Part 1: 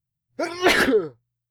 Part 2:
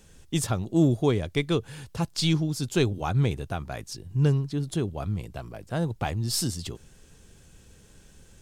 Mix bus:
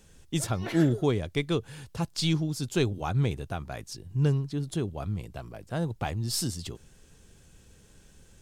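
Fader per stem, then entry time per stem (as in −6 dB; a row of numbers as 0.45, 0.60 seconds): −20.0, −2.5 decibels; 0.00, 0.00 seconds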